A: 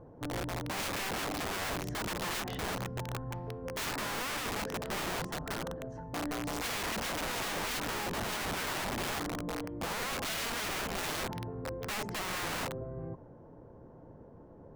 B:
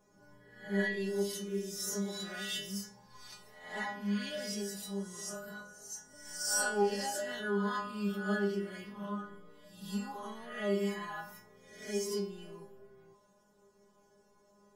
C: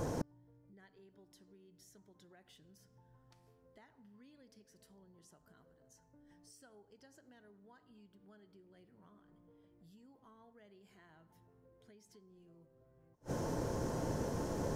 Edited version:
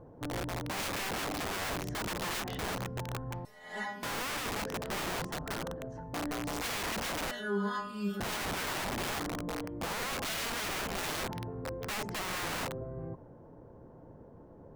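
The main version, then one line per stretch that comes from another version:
A
3.45–4.03 s: from B
7.31–8.20 s: from B
not used: C

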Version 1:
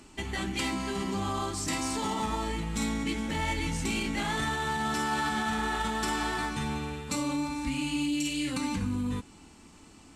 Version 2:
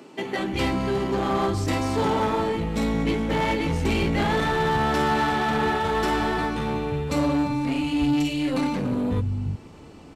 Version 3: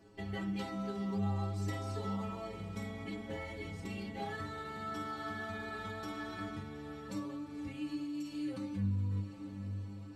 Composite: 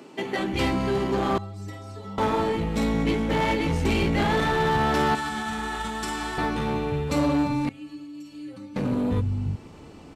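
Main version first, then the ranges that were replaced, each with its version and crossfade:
2
1.38–2.18 s: from 3
5.15–6.38 s: from 1
7.69–8.76 s: from 3

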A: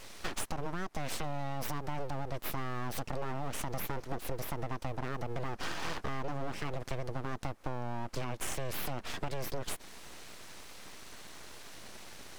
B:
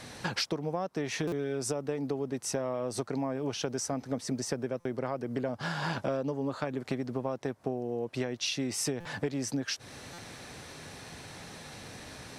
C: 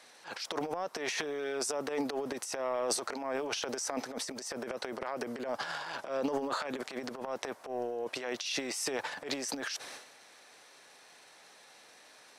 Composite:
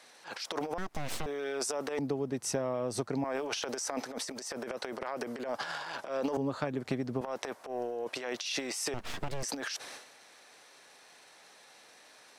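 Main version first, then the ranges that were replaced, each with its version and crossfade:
C
0.78–1.26 s: from A
1.99–3.24 s: from B
6.37–7.21 s: from B
8.94–9.43 s: from A

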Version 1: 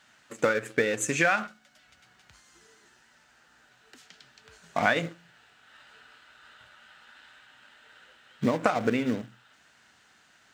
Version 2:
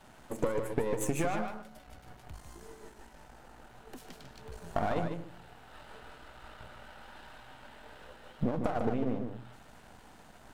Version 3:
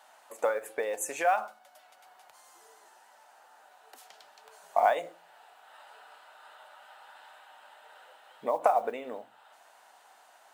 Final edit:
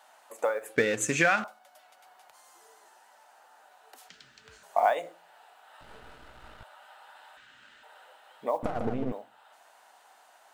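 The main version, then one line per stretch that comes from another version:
3
0.76–1.44 s: from 1
4.09–4.63 s: from 1
5.81–6.63 s: from 2
7.37–7.83 s: from 1
8.63–9.12 s: from 2

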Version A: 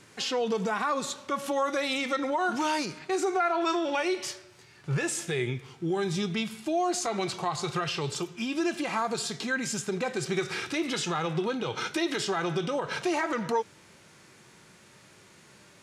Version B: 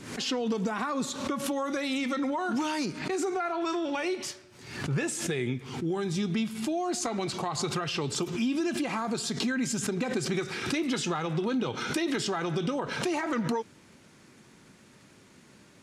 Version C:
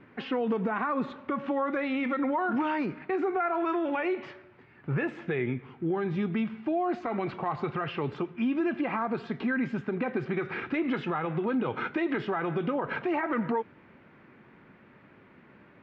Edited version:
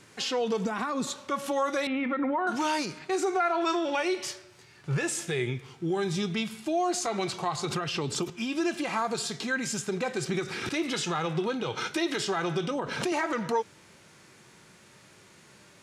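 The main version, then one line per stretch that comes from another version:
A
0.65–1.07 s: from B
1.87–2.47 s: from C
7.65–8.30 s: from B
10.29–10.69 s: from B
12.71–13.12 s: from B

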